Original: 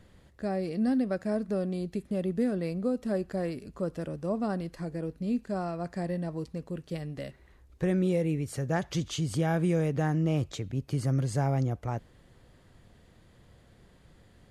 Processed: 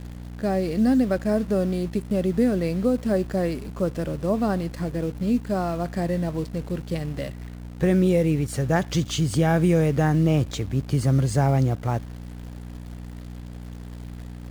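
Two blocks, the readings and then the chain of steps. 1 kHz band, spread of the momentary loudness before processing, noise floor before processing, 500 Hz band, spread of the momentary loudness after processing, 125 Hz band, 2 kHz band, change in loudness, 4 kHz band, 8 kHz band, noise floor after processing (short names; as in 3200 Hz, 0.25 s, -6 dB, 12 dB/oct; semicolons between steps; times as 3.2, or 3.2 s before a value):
+7.5 dB, 9 LU, -59 dBFS, +7.5 dB, 19 LU, +7.5 dB, +7.5 dB, +7.5 dB, +7.5 dB, +8.0 dB, -38 dBFS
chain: hum 60 Hz, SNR 13 dB; in parallel at -8.5 dB: bit-crush 7-bit; on the sum: gain +4.5 dB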